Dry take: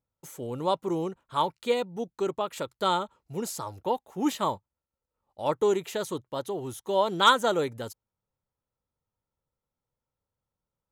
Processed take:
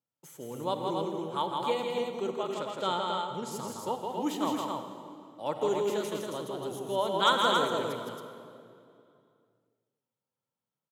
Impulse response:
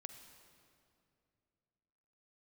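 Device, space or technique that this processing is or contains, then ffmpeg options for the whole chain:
stadium PA: -filter_complex "[0:a]asplit=3[link_01][link_02][link_03];[link_01]afade=type=out:start_time=2.53:duration=0.02[link_04];[link_02]lowpass=7800,afade=type=in:start_time=2.53:duration=0.02,afade=type=out:start_time=3.5:duration=0.02[link_05];[link_03]afade=type=in:start_time=3.5:duration=0.02[link_06];[link_04][link_05][link_06]amix=inputs=3:normalize=0,highpass=frequency=130:width=0.5412,highpass=frequency=130:width=1.3066,equalizer=frequency=3100:width_type=o:width=0.21:gain=4,aecho=1:1:163.3|274.1:0.631|0.631[link_07];[1:a]atrim=start_sample=2205[link_08];[link_07][link_08]afir=irnorm=-1:irlink=0"

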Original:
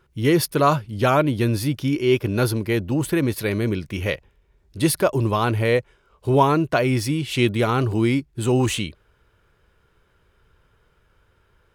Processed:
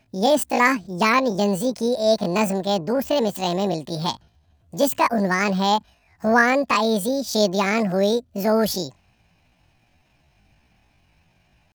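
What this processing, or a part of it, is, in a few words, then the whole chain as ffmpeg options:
chipmunk voice: -af "asetrate=76340,aresample=44100,atempo=0.577676"

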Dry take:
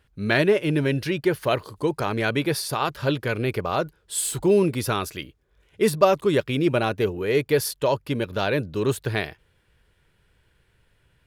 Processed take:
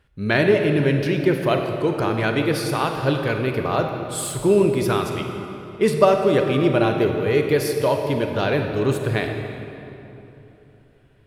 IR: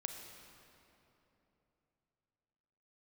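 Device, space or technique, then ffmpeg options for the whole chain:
swimming-pool hall: -filter_complex "[1:a]atrim=start_sample=2205[link_01];[0:a][link_01]afir=irnorm=-1:irlink=0,highshelf=frequency=4100:gain=-6,asettb=1/sr,asplit=3[link_02][link_03][link_04];[link_02]atrim=end=5.064[link_05];[link_03]atrim=start=5.06:end=6.24,asetpts=PTS-STARTPTS,afade=type=in:duration=0.004:curve=qsin,afade=type=out:start_time=1.176:duration=0.004:curve=qsin,lowpass=12000[link_06];[link_04]atrim=start=6.236[link_07];[link_05][link_06]acrossfade=duration=0.004:curve1=hsin:curve2=qsin[link_08];[link_08][link_07]acrossfade=duration=0.004:curve1=qsin:curve2=hsin,volume=4.5dB"

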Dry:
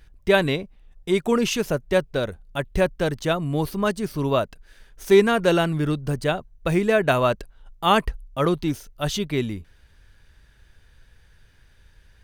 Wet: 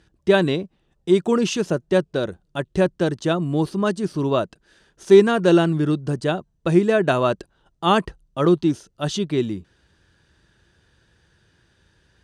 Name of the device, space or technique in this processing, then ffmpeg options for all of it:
car door speaker: -af "highpass=93,equalizer=frequency=180:width_type=q:width=4:gain=5,equalizer=frequency=340:width_type=q:width=4:gain=8,equalizer=frequency=2200:width_type=q:width=4:gain=-7,lowpass=frequency=9000:width=0.5412,lowpass=frequency=9000:width=1.3066"

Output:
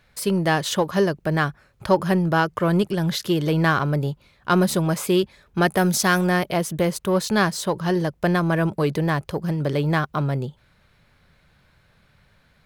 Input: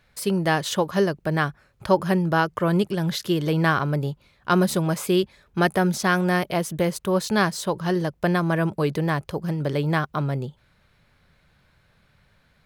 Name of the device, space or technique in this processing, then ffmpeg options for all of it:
parallel distortion: -filter_complex "[0:a]asplit=2[link_01][link_02];[link_02]asoftclip=type=hard:threshold=-23dB,volume=-10.5dB[link_03];[link_01][link_03]amix=inputs=2:normalize=0,asettb=1/sr,asplit=3[link_04][link_05][link_06];[link_04]atrim=end=5.774[link_07];[link_05]atrim=start=5.77:end=6.27,asetpts=PTS-STARTPTS,afade=type=in:duration=0.004:curve=qsin,afade=type=out:start_time=0.496:duration=0.004:curve=qsin,highshelf=frequency=5000:gain=9.5[link_08];[link_06]atrim=start=6.266[link_09];[link_07][link_08]acrossfade=duration=0.004:curve1=hsin:curve2=qsin[link_10];[link_10][link_09]acrossfade=duration=0.004:curve1=qsin:curve2=hsin"

